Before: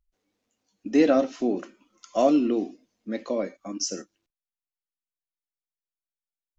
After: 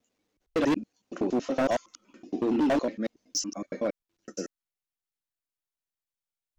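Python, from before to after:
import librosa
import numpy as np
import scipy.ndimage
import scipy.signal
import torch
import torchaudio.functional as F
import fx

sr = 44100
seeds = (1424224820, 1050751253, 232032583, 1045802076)

y = fx.block_reorder(x, sr, ms=93.0, group=6)
y = np.clip(y, -10.0 ** (-21.0 / 20.0), 10.0 ** (-21.0 / 20.0))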